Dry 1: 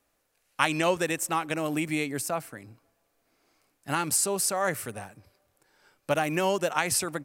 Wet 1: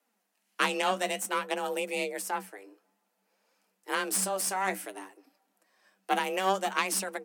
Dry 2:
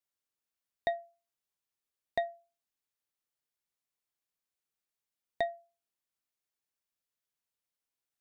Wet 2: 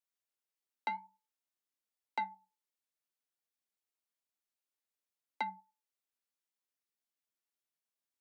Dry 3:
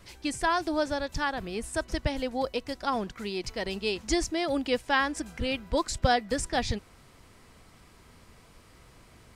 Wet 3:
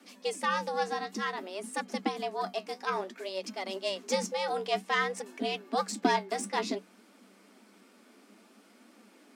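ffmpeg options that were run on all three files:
-af "aeval=exprs='0.501*(cos(1*acos(clip(val(0)/0.501,-1,1)))-cos(1*PI/2))+0.1*(cos(4*acos(clip(val(0)/0.501,-1,1)))-cos(4*PI/2))':channel_layout=same,afreqshift=190,flanger=delay=3.2:depth=9.9:regen=56:speed=0.56:shape=triangular"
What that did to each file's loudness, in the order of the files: −2.5, −4.0, −3.0 LU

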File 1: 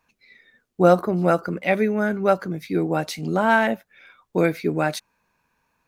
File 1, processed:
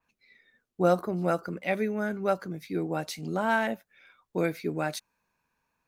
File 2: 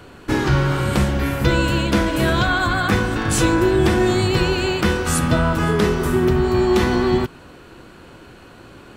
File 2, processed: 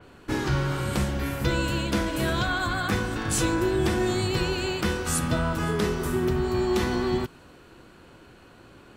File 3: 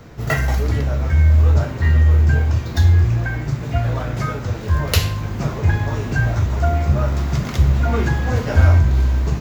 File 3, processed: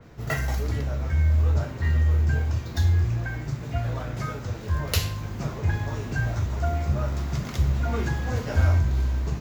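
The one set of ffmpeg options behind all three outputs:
-af "adynamicequalizer=threshold=0.0178:dfrequency=3900:dqfactor=0.7:tfrequency=3900:tqfactor=0.7:attack=5:release=100:ratio=0.375:range=2:mode=boostabove:tftype=highshelf,volume=-8dB"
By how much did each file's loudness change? −8.0, −7.5, −8.0 LU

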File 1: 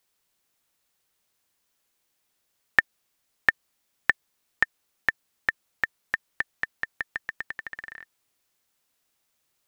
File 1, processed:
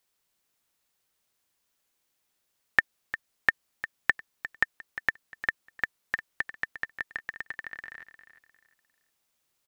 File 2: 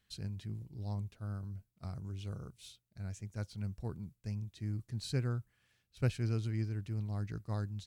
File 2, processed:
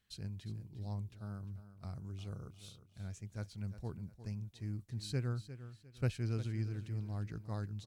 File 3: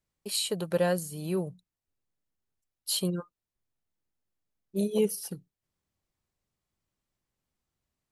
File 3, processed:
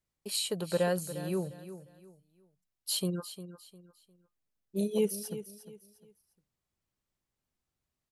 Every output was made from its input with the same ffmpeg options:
-af "aecho=1:1:353|706|1059:0.224|0.0672|0.0201,volume=-2.5dB"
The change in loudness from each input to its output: −3.0, −2.5, −2.5 LU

